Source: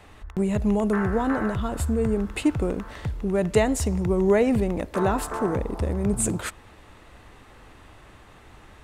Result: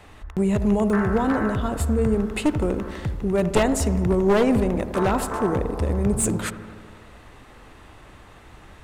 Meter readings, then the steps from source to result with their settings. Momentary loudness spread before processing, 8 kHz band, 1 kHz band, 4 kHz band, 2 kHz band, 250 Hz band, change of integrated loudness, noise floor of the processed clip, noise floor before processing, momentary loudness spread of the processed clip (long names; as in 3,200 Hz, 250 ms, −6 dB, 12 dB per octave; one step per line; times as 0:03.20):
8 LU, +2.0 dB, +3.0 dB, +3.0 dB, +2.0 dB, +2.5 dB, +2.0 dB, −47 dBFS, −50 dBFS, 9 LU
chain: wavefolder on the positive side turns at −17.5 dBFS
delay with a low-pass on its return 82 ms, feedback 73%, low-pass 1,500 Hz, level −12 dB
level +2 dB